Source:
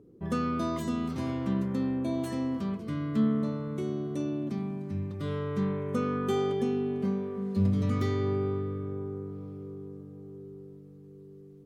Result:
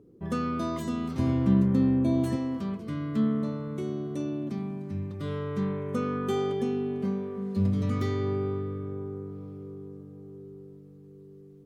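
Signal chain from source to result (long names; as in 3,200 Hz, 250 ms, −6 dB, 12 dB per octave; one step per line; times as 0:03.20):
0:01.19–0:02.36: low-shelf EQ 300 Hz +11 dB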